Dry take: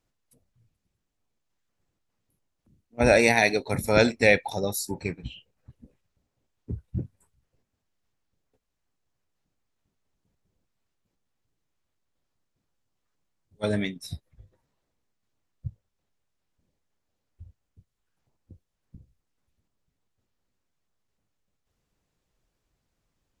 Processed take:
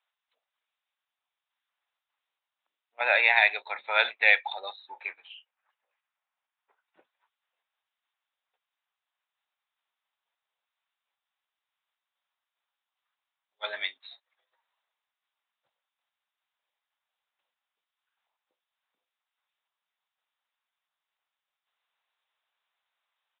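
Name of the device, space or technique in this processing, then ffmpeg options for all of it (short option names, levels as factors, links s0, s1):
musical greeting card: -filter_complex "[0:a]asettb=1/sr,asplit=3[s0][s1][s2];[s0]atrim=end=5.254[s3];[s1]atrim=start=5.25:end=6.96,asetpts=PTS-STARTPTS,afade=t=in:d=0.004:c=qsin,afade=t=out:st=1.706:d=0.004:c=qsin,acrossover=split=570 2800:gain=0.0708 1 0.251[s4][s5][s6];[s4][s5][s6]amix=inputs=3:normalize=0[s7];[s2]atrim=start=6.956[s8];[s3][s7]acrossfade=d=0.004:c1=hsin:c2=qsin[s9];[s9][s8]acrossfade=d=0.004:c1=qsin:c2=hsin,aresample=8000,aresample=44100,highpass=f=830:w=0.5412,highpass=f=830:w=1.3066,equalizer=f=3800:t=o:w=0.39:g=5.5,volume=1.26"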